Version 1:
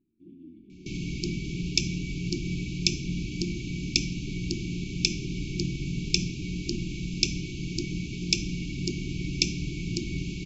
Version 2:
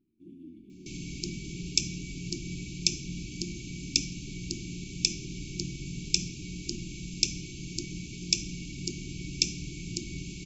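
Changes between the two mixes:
second sound −7.0 dB
master: remove high-frequency loss of the air 130 metres

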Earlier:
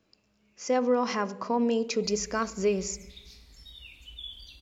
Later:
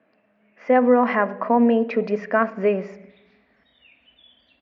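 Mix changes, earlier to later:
speech +7.0 dB
master: add loudspeaker in its box 230–2,400 Hz, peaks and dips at 240 Hz +6 dB, 360 Hz −5 dB, 650 Hz +9 dB, 1,800 Hz +8 dB

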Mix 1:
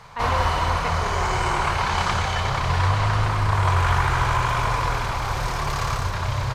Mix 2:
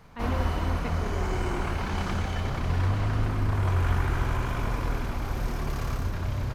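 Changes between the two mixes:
background: add parametric band 4,100 Hz −4 dB 1.9 octaves
master: add octave-band graphic EQ 125/250/500/1,000/2,000/4,000/8,000 Hz −8/+9/−5/−12/−5/−6/−9 dB

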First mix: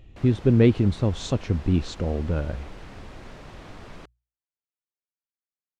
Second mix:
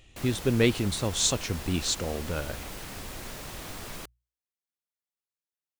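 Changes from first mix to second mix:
speech: add low-shelf EQ 490 Hz −9.5 dB
master: remove head-to-tape spacing loss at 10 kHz 23 dB

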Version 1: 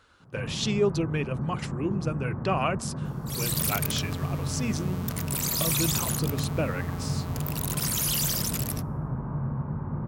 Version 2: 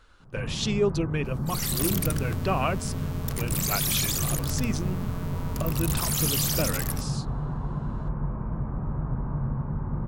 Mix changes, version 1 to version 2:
second sound: entry −1.80 s
master: remove high-pass filter 83 Hz 12 dB per octave

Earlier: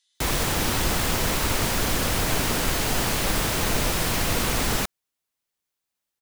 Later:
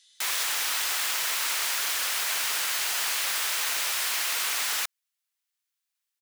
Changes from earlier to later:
speech +11.0 dB
master: add high-pass filter 1,400 Hz 12 dB per octave

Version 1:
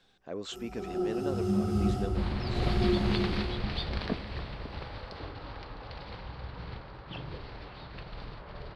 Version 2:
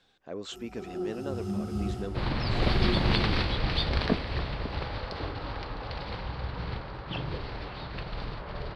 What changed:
first sound: send −8.5 dB
second sound +6.5 dB

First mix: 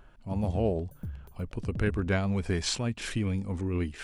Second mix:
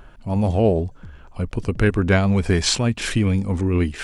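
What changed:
speech +10.5 dB
background: add Chebyshev low-pass with heavy ripple 7,800 Hz, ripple 3 dB

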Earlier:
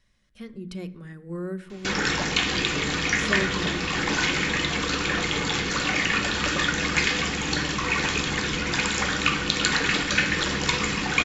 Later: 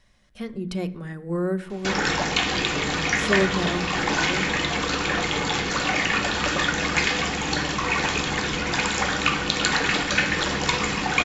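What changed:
speech +6.0 dB
master: add parametric band 740 Hz +7 dB 0.91 octaves

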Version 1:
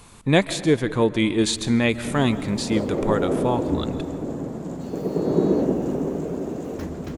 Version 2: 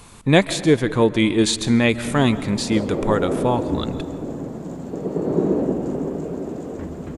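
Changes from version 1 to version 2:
speech +3.0 dB
first sound: add high-frequency loss of the air 370 metres

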